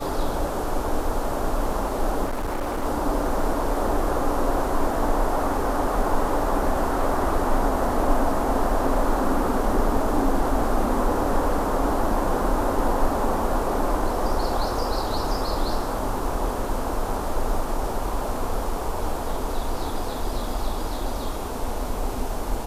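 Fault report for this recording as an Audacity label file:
2.250000	2.850000	clipped -23 dBFS

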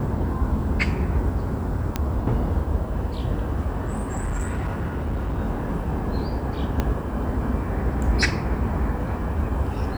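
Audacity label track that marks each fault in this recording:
1.960000	1.960000	pop -9 dBFS
3.870000	5.390000	clipped -22 dBFS
6.800000	6.800000	pop -10 dBFS

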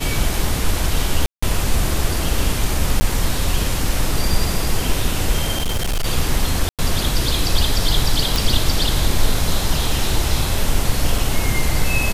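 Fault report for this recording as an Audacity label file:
1.260000	1.430000	dropout 165 ms
3.000000	3.010000	dropout 10 ms
5.550000	6.060000	clipped -16 dBFS
6.690000	6.790000	dropout 97 ms
8.360000	8.360000	pop
11.180000	11.180000	dropout 3.3 ms

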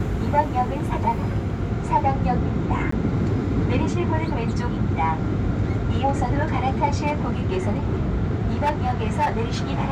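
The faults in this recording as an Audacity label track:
2.910000	2.920000	dropout 14 ms
7.060000	9.580000	clipped -16 dBFS

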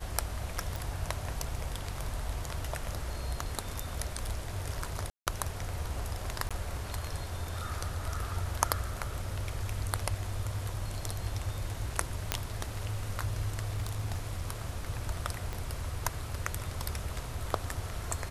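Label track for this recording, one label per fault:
0.760000	0.760000	pop
5.100000	5.270000	dropout 168 ms
6.490000	6.510000	dropout 16 ms
12.320000	12.320000	pop -9 dBFS
13.730000	14.480000	clipped -28.5 dBFS
15.530000	15.530000	pop -23 dBFS

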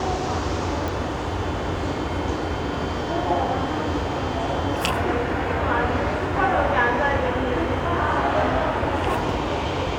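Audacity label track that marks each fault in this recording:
0.880000	0.880000	pop

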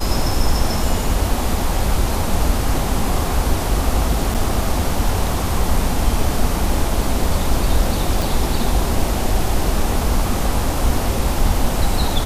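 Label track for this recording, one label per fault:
4.340000	4.350000	dropout 6.8 ms
8.220000	8.220000	pop

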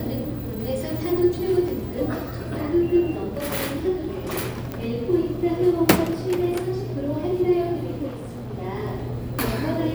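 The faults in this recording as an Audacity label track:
1.680000	1.680000	dropout 3.7 ms
4.720000	4.720000	pop -16 dBFS
8.070000	8.540000	clipped -30.5 dBFS

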